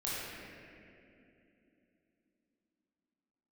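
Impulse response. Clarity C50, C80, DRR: −4.5 dB, −2.5 dB, −9.0 dB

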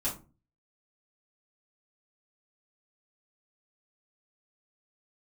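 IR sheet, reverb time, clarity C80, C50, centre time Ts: 0.35 s, 16.0 dB, 9.5 dB, 23 ms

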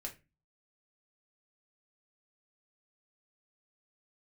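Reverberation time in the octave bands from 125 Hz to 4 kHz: 0.55, 0.45, 0.30, 0.25, 0.30, 0.20 seconds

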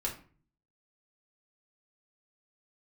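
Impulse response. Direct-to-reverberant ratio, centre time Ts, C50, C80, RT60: −2.5 dB, 20 ms, 9.0 dB, 14.5 dB, 0.40 s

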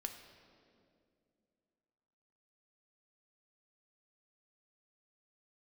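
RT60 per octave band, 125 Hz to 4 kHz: 2.8, 3.1, 2.8, 2.0, 1.8, 1.6 seconds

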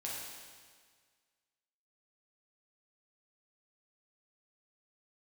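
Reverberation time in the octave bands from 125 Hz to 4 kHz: 1.8, 1.7, 1.7, 1.7, 1.7, 1.7 seconds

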